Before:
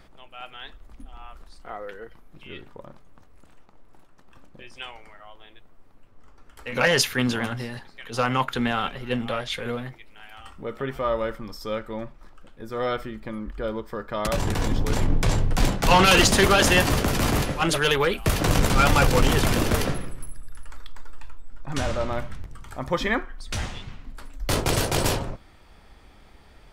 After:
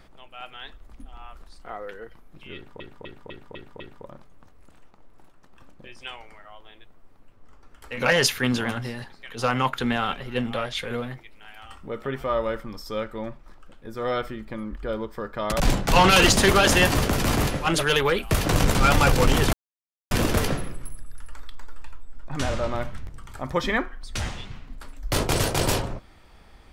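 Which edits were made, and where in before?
0:02.55–0:02.80: repeat, 6 plays
0:14.35–0:15.55: remove
0:19.48: splice in silence 0.58 s

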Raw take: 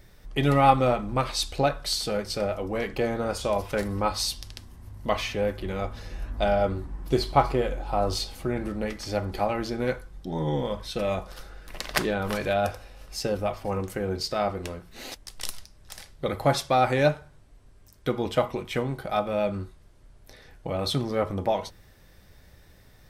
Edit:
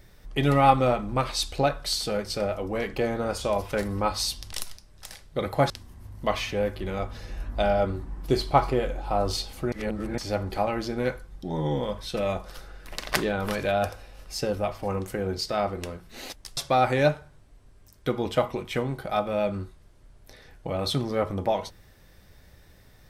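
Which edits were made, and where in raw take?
0:08.54–0:09.00: reverse
0:15.39–0:16.57: move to 0:04.52

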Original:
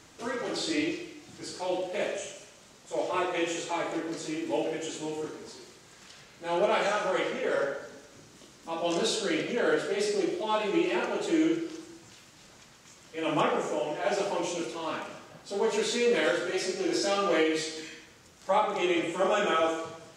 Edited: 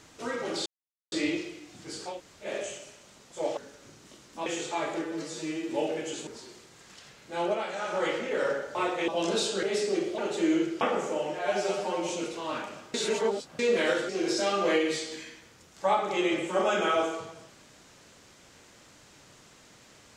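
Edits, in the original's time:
0:00.66: splice in silence 0.46 s
0:01.67–0:02.02: fill with room tone, crossfade 0.16 s
0:03.11–0:03.44: swap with 0:07.87–0:08.76
0:04.03–0:04.47: time-stretch 1.5×
0:05.03–0:05.39: remove
0:06.51–0:07.13: duck −8.5 dB, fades 0.26 s
0:09.31–0:09.89: remove
0:10.44–0:11.08: remove
0:11.71–0:13.42: remove
0:14.00–0:14.46: time-stretch 1.5×
0:15.32–0:15.97: reverse
0:16.47–0:16.74: remove

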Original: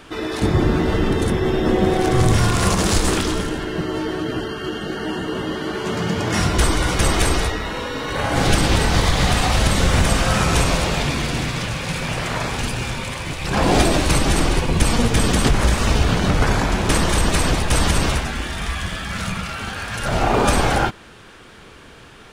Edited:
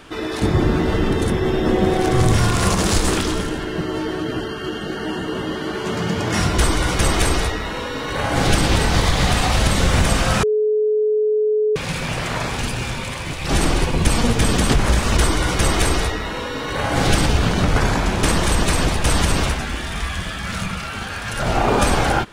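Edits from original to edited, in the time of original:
0:06.57–0:08.66: duplicate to 0:15.92
0:10.43–0:11.76: beep over 427 Hz −14.5 dBFS
0:13.49–0:14.24: remove

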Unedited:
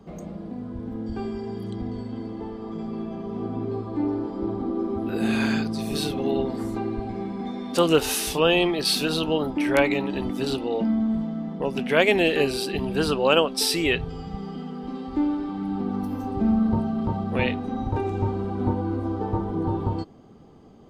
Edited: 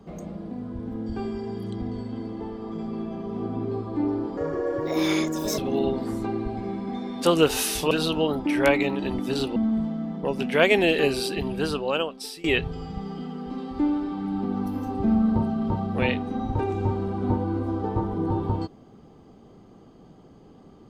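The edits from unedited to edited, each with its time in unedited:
0:04.37–0:06.10: play speed 143%
0:08.43–0:09.02: remove
0:10.67–0:10.93: remove
0:12.65–0:13.81: fade out, to −22 dB

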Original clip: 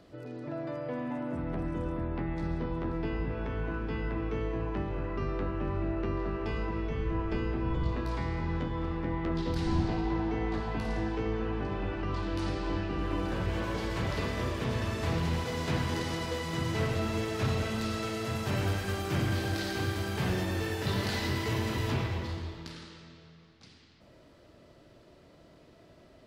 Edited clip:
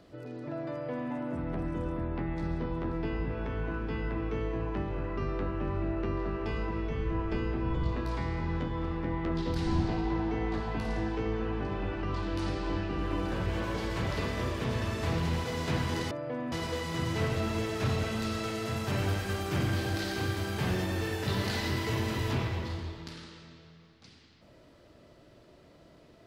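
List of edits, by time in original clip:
0:00.70–0:01.11: duplicate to 0:16.11

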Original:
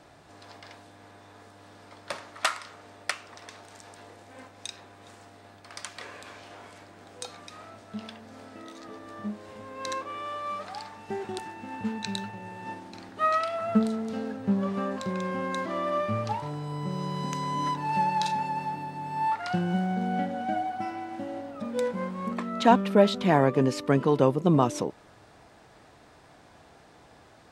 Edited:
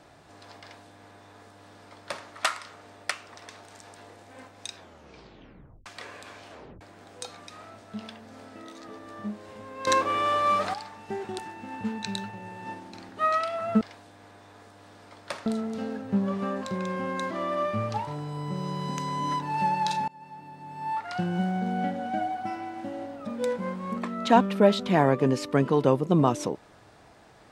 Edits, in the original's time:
0:00.61–0:02.26: duplicate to 0:13.81
0:04.74: tape stop 1.12 s
0:06.51: tape stop 0.30 s
0:09.87–0:10.74: clip gain +10.5 dB
0:18.43–0:19.78: fade in linear, from −22.5 dB

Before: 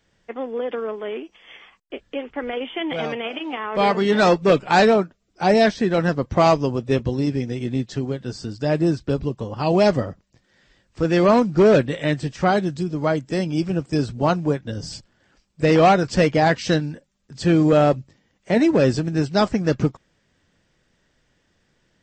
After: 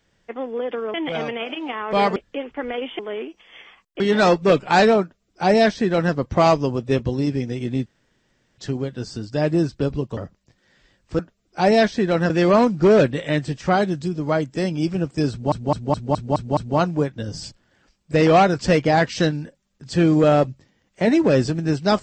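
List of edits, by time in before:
0:00.94–0:01.95: swap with 0:02.78–0:04.00
0:05.02–0:06.13: duplicate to 0:11.05
0:07.86: splice in room tone 0.72 s
0:09.45–0:10.03: remove
0:14.06: stutter 0.21 s, 7 plays

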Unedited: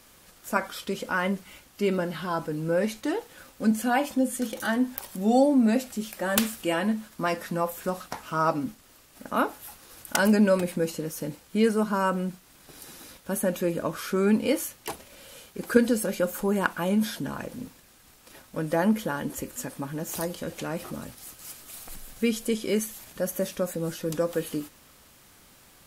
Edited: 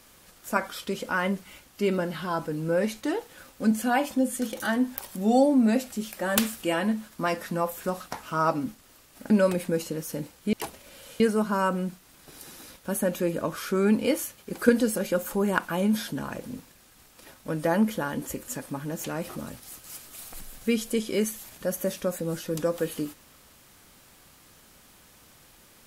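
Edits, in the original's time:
0:09.30–0:10.38: remove
0:14.79–0:15.46: move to 0:11.61
0:20.12–0:20.59: remove

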